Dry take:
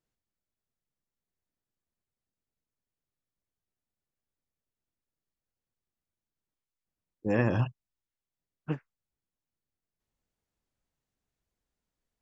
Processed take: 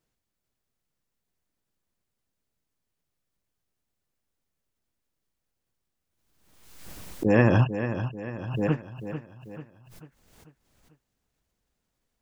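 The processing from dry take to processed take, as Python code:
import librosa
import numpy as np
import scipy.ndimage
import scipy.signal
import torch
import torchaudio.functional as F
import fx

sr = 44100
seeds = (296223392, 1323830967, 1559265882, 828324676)

y = fx.echo_feedback(x, sr, ms=442, feedback_pct=47, wet_db=-10)
y = fx.pre_swell(y, sr, db_per_s=50.0)
y = y * 10.0 ** (6.5 / 20.0)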